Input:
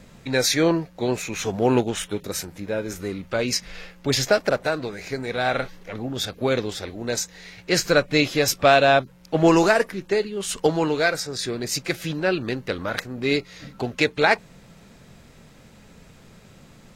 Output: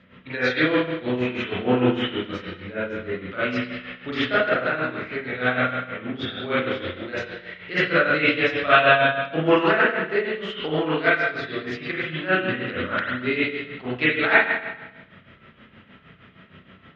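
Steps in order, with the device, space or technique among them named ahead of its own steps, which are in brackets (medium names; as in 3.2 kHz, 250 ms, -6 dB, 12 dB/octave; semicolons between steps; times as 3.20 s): combo amplifier with spring reverb and tremolo (spring tank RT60 1.1 s, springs 32/44 ms, chirp 75 ms, DRR -9.5 dB; tremolo 6.4 Hz, depth 67%; cabinet simulation 81–3600 Hz, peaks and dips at 150 Hz -4 dB, 490 Hz -3 dB, 820 Hz -7 dB, 1.3 kHz +7 dB, 1.9 kHz +7 dB, 3.1 kHz +9 dB); trim -7 dB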